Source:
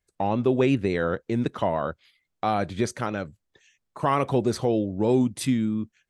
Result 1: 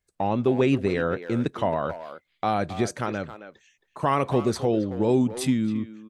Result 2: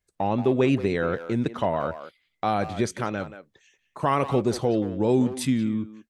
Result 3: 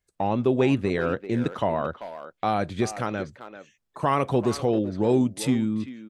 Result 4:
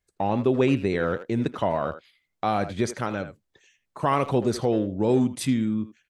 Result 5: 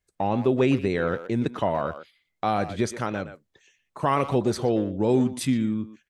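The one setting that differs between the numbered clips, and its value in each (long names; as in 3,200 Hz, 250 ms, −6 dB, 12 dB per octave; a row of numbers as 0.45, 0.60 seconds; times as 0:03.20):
far-end echo of a speakerphone, delay time: 270, 180, 390, 80, 120 milliseconds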